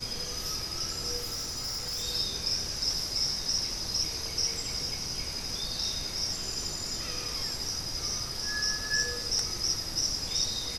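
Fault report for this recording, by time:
0:01.17–0:02.04: clipping −31 dBFS

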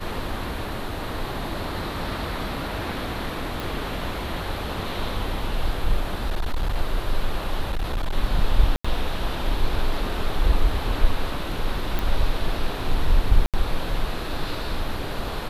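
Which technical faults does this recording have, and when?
0:03.60: click
0:06.23–0:06.76: clipping −19.5 dBFS
0:07.71–0:08.15: clipping −20.5 dBFS
0:08.76–0:08.85: drop-out 85 ms
0:11.99: click
0:13.46–0:13.54: drop-out 77 ms

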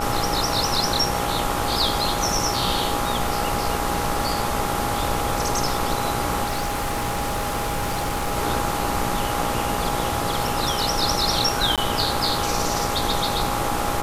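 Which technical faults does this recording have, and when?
mains buzz 60 Hz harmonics 23 −29 dBFS
surface crackle 18 per second −29 dBFS
whistle 820 Hz −28 dBFS
0:06.44–0:08.38: clipping −20.5 dBFS
0:11.76–0:11.78: drop-out 17 ms

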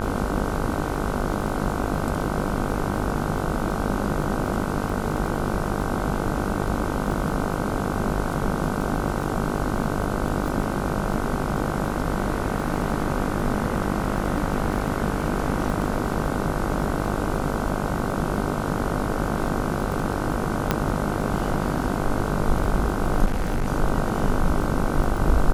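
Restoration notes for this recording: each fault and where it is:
mains buzz 50 Hz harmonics 31 −28 dBFS
surface crackle 11 per second −27 dBFS
0:20.71: click −5 dBFS
0:23.25–0:23.68: clipping −19.5 dBFS

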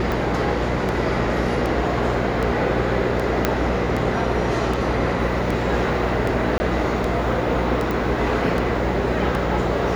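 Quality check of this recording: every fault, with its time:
mains hum 60 Hz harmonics 8 −26 dBFS
scratch tick 78 rpm
0:03.45: click −3 dBFS
0:06.58–0:06.60: drop-out 20 ms
0:07.91: click

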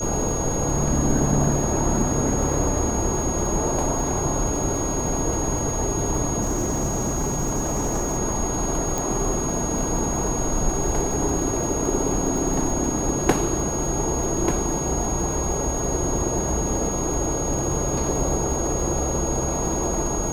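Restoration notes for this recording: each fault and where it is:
surface crackle 120 per second −30 dBFS
whistle 6,600 Hz −28 dBFS
0:06.41–0:08.18: clipping −19.5 dBFS
0:08.98: click

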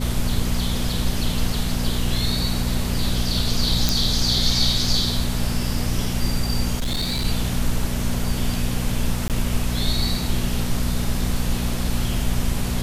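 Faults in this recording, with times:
mains hum 60 Hz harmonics 4 −26 dBFS
0:03.89: click
0:06.76–0:07.26: clipping −19.5 dBFS
0:09.28–0:09.30: drop-out 18 ms

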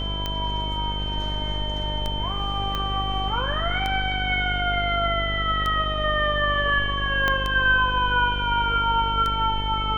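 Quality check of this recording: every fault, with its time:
mains buzz 50 Hz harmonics 18 −29 dBFS
scratch tick 33 1/3 rpm −13 dBFS
whistle 3,100 Hz −30 dBFS
0:02.75: click −14 dBFS
0:07.28: click −9 dBFS

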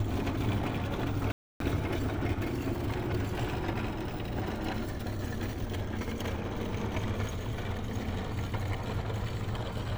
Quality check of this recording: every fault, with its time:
0:01.32–0:01.60: drop-out 283 ms

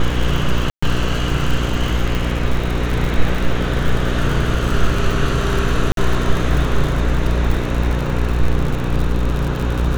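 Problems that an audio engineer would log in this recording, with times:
mains buzz 60 Hz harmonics 9 −20 dBFS
surface crackle 89 per second −21 dBFS
0:00.70–0:00.82: drop-out 125 ms
0:02.15: click
0:05.92–0:05.97: drop-out 52 ms

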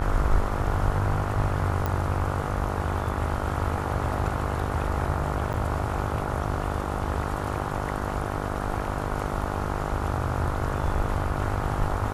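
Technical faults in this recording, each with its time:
mains buzz 50 Hz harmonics 29 −31 dBFS
0:01.86: click −14 dBFS
0:05.53–0:05.54: drop-out 9.5 ms

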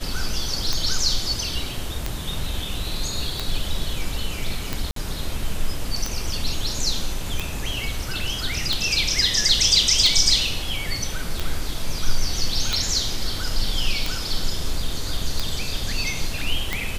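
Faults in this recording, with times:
scratch tick 45 rpm
0:04.91–0:04.96: drop-out 53 ms

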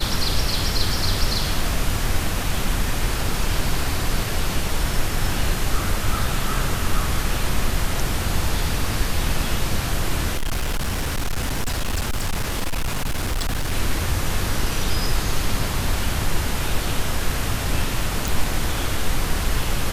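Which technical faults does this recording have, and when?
0:10.33–0:13.73: clipping −19 dBFS
0:18.28: click

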